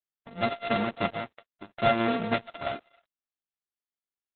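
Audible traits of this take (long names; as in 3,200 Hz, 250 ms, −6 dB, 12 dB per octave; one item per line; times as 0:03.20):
a buzz of ramps at a fixed pitch in blocks of 64 samples
chopped level 0.59 Hz, depth 60%, duty 65%
a quantiser's noise floor 12 bits, dither none
Opus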